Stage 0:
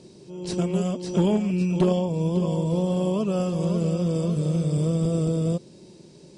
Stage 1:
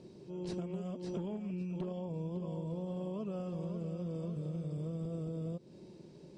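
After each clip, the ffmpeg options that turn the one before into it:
-af "aemphasis=mode=reproduction:type=75kf,acompressor=threshold=-31dB:ratio=12,volume=-5dB"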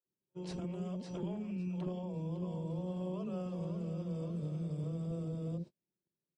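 -filter_complex "[0:a]acrossover=split=420[a][b];[a]adelay=60[c];[c][b]amix=inputs=2:normalize=0,agate=range=-41dB:threshold=-46dB:ratio=16:detection=peak,volume=1dB"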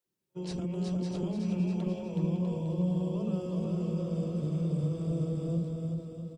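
-filter_complex "[0:a]acrossover=split=490|3000[a][b][c];[b]acompressor=threshold=-56dB:ratio=3[d];[a][d][c]amix=inputs=3:normalize=0,aecho=1:1:370|647.5|855.6|1012|1129:0.631|0.398|0.251|0.158|0.1,volume=6dB"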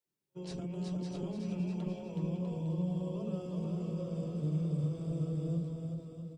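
-af "flanger=delay=6.5:depth=1:regen=61:speed=1.1:shape=triangular"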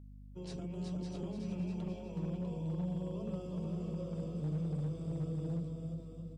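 -af "volume=29.5dB,asoftclip=hard,volume=-29.5dB,aeval=exprs='val(0)+0.00398*(sin(2*PI*50*n/s)+sin(2*PI*2*50*n/s)/2+sin(2*PI*3*50*n/s)/3+sin(2*PI*4*50*n/s)/4+sin(2*PI*5*50*n/s)/5)':c=same,volume=-2.5dB"

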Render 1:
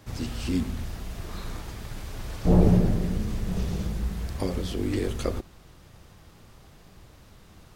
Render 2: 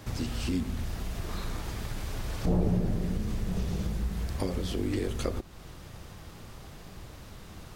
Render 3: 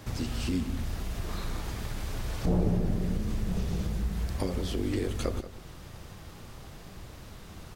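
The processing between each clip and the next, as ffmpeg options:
-af "acompressor=threshold=-39dB:ratio=2,volume=5.5dB"
-af "aecho=1:1:182:0.2"

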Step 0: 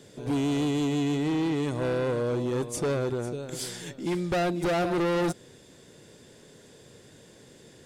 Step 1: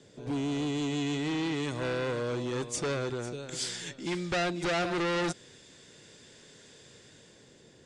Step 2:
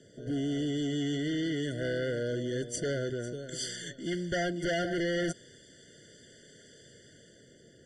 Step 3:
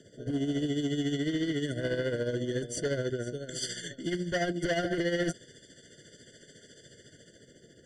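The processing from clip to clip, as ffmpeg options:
-filter_complex "[0:a]lowpass=f=8.1k:w=0.5412,lowpass=f=8.1k:w=1.3066,acrossover=split=510|1300[a][b][c];[c]dynaudnorm=f=160:g=11:m=8dB[d];[a][b][d]amix=inputs=3:normalize=0,volume=-5dB"
-af "afftfilt=real='re*eq(mod(floor(b*sr/1024/710),2),0)':imag='im*eq(mod(floor(b*sr/1024/710),2),0)':win_size=1024:overlap=0.75"
-filter_complex "[0:a]asplit=2[a][b];[b]aeval=exprs='clip(val(0),-1,0.0316)':c=same,volume=-5dB[c];[a][c]amix=inputs=2:normalize=0,tremolo=f=14:d=0.57"

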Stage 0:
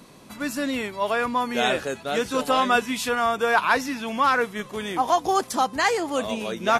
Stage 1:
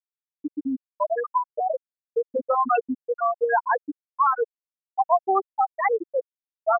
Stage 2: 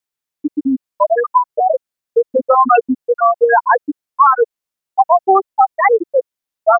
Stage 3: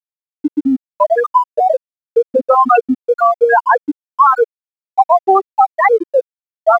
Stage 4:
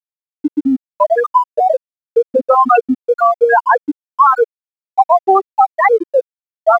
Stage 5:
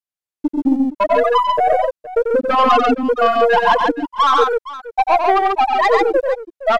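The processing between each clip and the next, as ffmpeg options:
-filter_complex "[0:a]afftfilt=real='re*gte(hypot(re,im),0.562)':imag='im*gte(hypot(re,im),0.562)':win_size=1024:overlap=0.75,bandreject=f=1.5k:w=6.7,asplit=2[a][b];[b]acompressor=threshold=-31dB:ratio=6,volume=0dB[c];[a][c]amix=inputs=2:normalize=0"
-af "alimiter=level_in=12dB:limit=-1dB:release=50:level=0:latency=1,volume=-1dB"
-filter_complex "[0:a]asplit=2[a][b];[b]acompressor=threshold=-17dB:ratio=6,volume=-0.5dB[c];[a][c]amix=inputs=2:normalize=0,aeval=exprs='sgn(val(0))*max(abs(val(0))-0.0075,0)':c=same,volume=-2dB"
-af anull
-af "aeval=exprs='(tanh(3.16*val(0)+0.15)-tanh(0.15))/3.16':c=same,aecho=1:1:92|140|467:0.501|0.708|0.158,aresample=32000,aresample=44100"

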